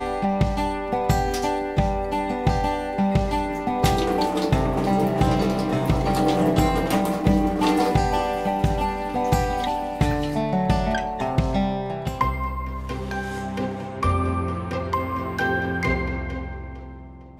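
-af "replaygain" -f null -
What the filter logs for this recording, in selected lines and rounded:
track_gain = +5.0 dB
track_peak = 0.328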